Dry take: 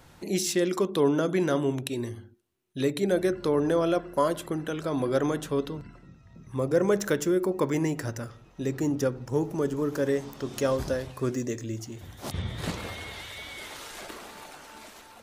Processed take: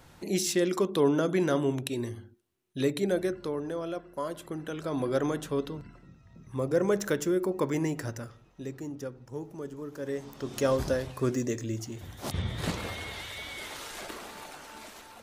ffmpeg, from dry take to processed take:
-af "volume=8.41,afade=t=out:st=2.91:d=0.71:silence=0.354813,afade=t=in:st=4.21:d=0.78:silence=0.421697,afade=t=out:st=8.05:d=0.8:silence=0.354813,afade=t=in:st=9.97:d=0.78:silence=0.251189"

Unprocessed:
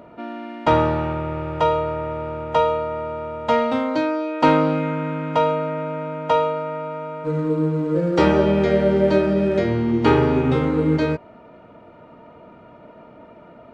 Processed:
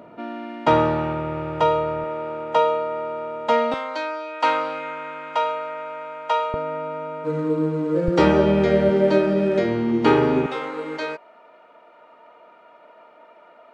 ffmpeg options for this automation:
-af "asetnsamples=n=441:p=0,asendcmd='2.04 highpass f 260;3.74 highpass f 780;6.54 highpass f 190;8.08 highpass f 67;8.89 highpass f 170;10.46 highpass f 680',highpass=120"

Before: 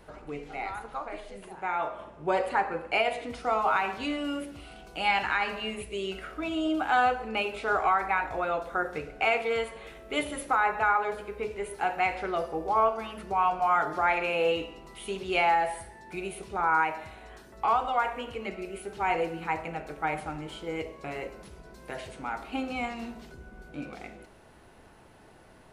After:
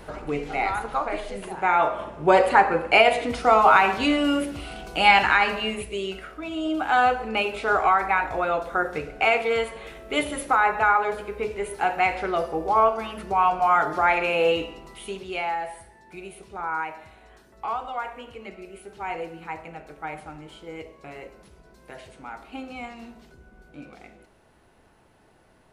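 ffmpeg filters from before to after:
-af "volume=6.68,afade=t=out:st=5.07:d=1.34:silence=0.266073,afade=t=in:st=6.41:d=0.73:silence=0.473151,afade=t=out:st=14.7:d=0.67:silence=0.354813"

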